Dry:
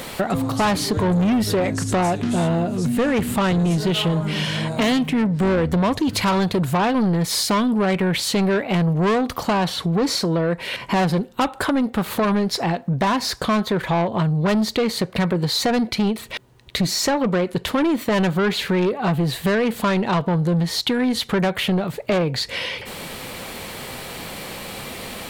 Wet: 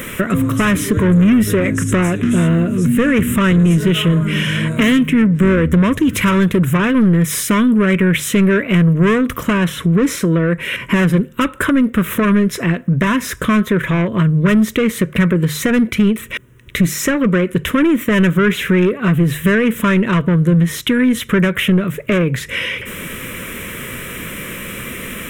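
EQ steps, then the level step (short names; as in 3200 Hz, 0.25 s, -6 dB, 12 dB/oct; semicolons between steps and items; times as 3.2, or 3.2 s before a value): notches 50/100/150 Hz; fixed phaser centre 1900 Hz, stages 4; +8.5 dB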